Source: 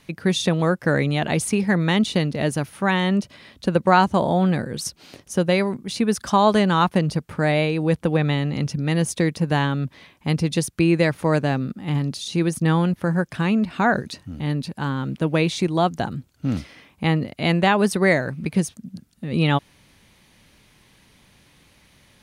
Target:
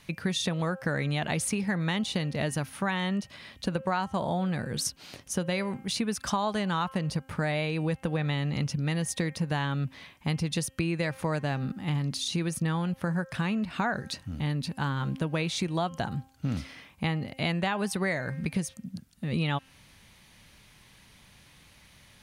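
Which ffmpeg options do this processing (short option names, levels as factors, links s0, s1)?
-af "equalizer=f=350:w=0.9:g=-6,bandreject=f=265.2:t=h:w=4,bandreject=f=530.4:t=h:w=4,bandreject=f=795.6:t=h:w=4,bandreject=f=1060.8:t=h:w=4,bandreject=f=1326:t=h:w=4,bandreject=f=1591.2:t=h:w=4,bandreject=f=1856.4:t=h:w=4,bandreject=f=2121.6:t=h:w=4,bandreject=f=2386.8:t=h:w=4,bandreject=f=2652:t=h:w=4,bandreject=f=2917.2:t=h:w=4,bandreject=f=3182.4:t=h:w=4,acompressor=threshold=0.0501:ratio=5"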